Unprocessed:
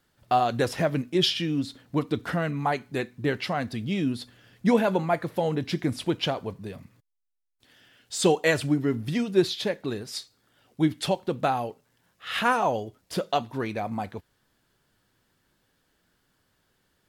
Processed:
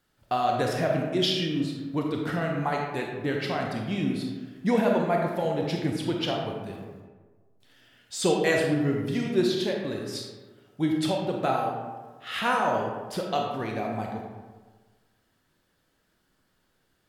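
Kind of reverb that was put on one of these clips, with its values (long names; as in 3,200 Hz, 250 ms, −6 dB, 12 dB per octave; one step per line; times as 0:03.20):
comb and all-pass reverb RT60 1.4 s, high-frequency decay 0.5×, pre-delay 0 ms, DRR 0 dB
level −3.5 dB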